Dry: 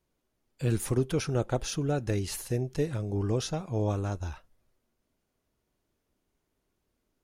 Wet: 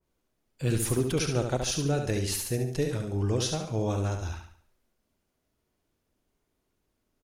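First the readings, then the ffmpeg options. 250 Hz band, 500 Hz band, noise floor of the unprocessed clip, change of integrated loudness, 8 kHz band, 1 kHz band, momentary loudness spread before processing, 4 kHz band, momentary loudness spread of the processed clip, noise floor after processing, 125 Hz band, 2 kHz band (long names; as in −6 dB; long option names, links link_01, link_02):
+1.0 dB, +1.0 dB, −80 dBFS, +2.0 dB, +6.0 dB, +1.5 dB, 5 LU, +6.0 dB, 5 LU, −79 dBFS, +1.0 dB, +3.5 dB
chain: -af "aecho=1:1:71|142|213|284|355:0.501|0.2|0.0802|0.0321|0.0128,adynamicequalizer=threshold=0.00398:dfrequency=1900:dqfactor=0.7:tfrequency=1900:tqfactor=0.7:attack=5:release=100:ratio=0.375:range=2.5:mode=boostabove:tftype=highshelf"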